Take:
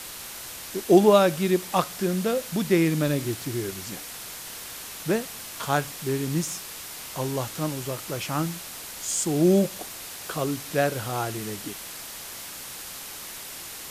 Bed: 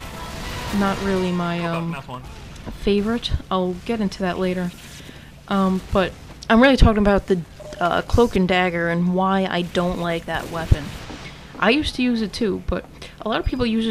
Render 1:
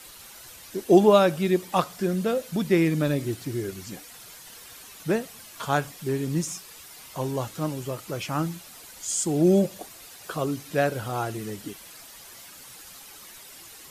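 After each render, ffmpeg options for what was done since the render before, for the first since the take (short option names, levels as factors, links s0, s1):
-af "afftdn=nr=10:nf=-39"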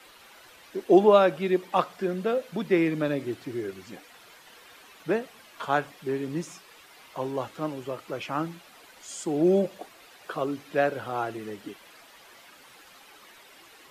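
-filter_complex "[0:a]acrossover=split=240 3600:gain=0.251 1 0.2[s0][s1][s2];[s0][s1][s2]amix=inputs=3:normalize=0"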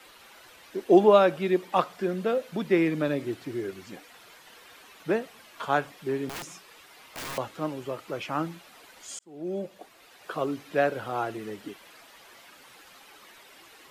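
-filter_complex "[0:a]asettb=1/sr,asplit=3[s0][s1][s2];[s0]atrim=end=6.294[s3];[s1]atrim=start=6.29:end=7.38,asetpts=PTS-STARTPTS,afade=t=in:d=0.004:c=qsin,afade=t=out:st=1.086:d=0.004:c=qsin,aeval=exprs='(mod(39.8*val(0)+1,2)-1)/39.8':c=same[s4];[s2]atrim=start=7.376[s5];[s3][s4]acrossfade=d=0.004:c1=hsin:c2=qsin[s6];[s6][s5]acrossfade=d=0.004:c1=qsin:c2=hsin,asplit=2[s7][s8];[s7]atrim=end=9.19,asetpts=PTS-STARTPTS,afade=t=out:st=9.186:d=0.004:c=hsin[s9];[s8]atrim=start=9.19,asetpts=PTS-STARTPTS,afade=t=in:d=1.19[s10];[s9][s10]concat=n=2:v=0:a=1"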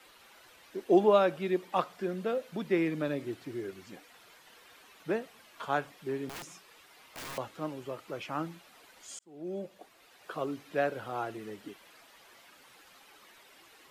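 -af "volume=0.531"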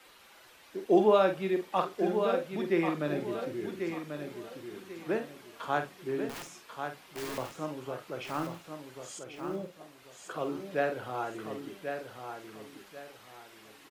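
-filter_complex "[0:a]asplit=2[s0][s1];[s1]adelay=47,volume=0.398[s2];[s0][s2]amix=inputs=2:normalize=0,aecho=1:1:1090|2180|3270|4360:0.447|0.134|0.0402|0.0121"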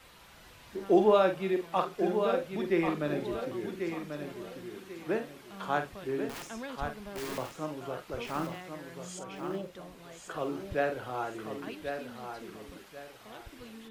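-filter_complex "[1:a]volume=0.0398[s0];[0:a][s0]amix=inputs=2:normalize=0"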